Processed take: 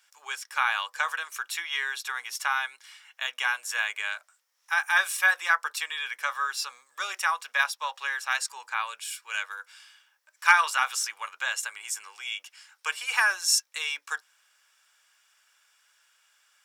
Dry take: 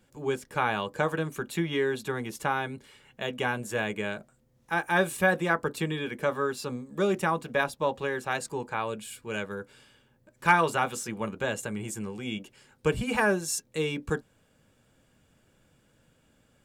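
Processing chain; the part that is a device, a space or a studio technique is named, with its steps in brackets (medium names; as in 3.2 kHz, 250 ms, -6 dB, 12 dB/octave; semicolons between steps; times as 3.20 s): headphones lying on a table (high-pass 1.1 kHz 24 dB/octave; peaking EQ 5.5 kHz +9 dB 0.25 oct); trim +5.5 dB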